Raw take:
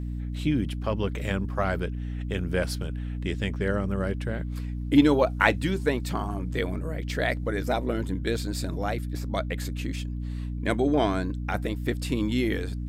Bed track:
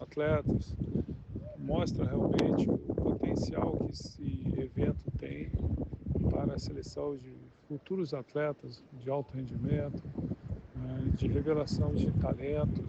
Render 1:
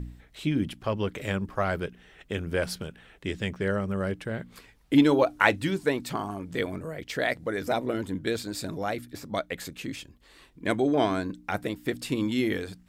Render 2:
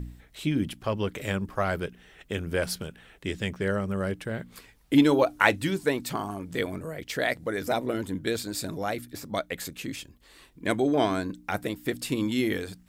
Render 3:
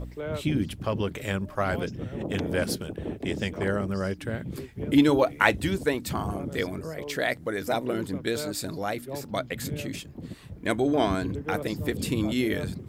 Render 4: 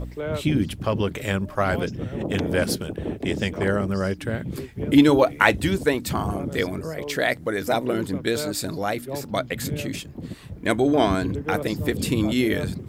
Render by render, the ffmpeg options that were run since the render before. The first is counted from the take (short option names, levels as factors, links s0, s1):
-af "bandreject=f=60:t=h:w=4,bandreject=f=120:t=h:w=4,bandreject=f=180:t=h:w=4,bandreject=f=240:t=h:w=4,bandreject=f=300:t=h:w=4"
-af "highshelf=f=7600:g=7.5"
-filter_complex "[1:a]volume=0.708[s0];[0:a][s0]amix=inputs=2:normalize=0"
-af "volume=1.68,alimiter=limit=0.891:level=0:latency=1"